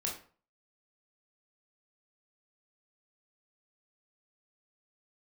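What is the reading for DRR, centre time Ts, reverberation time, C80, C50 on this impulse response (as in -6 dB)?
-2.0 dB, 28 ms, 0.45 s, 12.0 dB, 7.0 dB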